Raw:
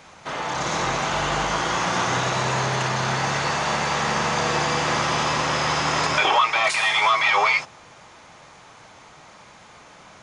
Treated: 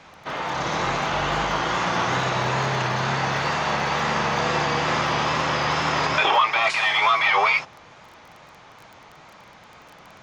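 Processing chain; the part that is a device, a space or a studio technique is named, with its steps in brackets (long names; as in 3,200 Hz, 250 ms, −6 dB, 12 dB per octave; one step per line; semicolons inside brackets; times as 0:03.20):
lo-fi chain (low-pass filter 4,700 Hz 12 dB per octave; tape wow and flutter; surface crackle 20 per second −34 dBFS)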